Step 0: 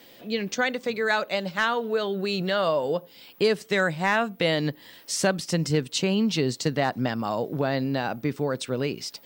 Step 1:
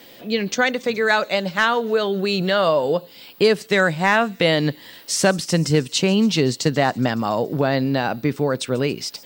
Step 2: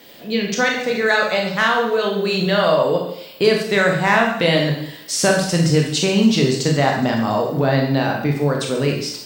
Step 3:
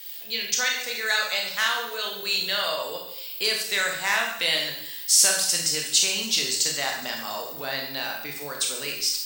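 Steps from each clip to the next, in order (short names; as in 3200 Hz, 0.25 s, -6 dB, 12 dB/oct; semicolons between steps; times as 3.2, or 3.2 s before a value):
thin delay 0.14 s, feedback 69%, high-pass 5000 Hz, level -17 dB; gain +6 dB
reverb, pre-delay 22 ms, DRR 0 dB; gain -1 dB
differentiator; gain +6 dB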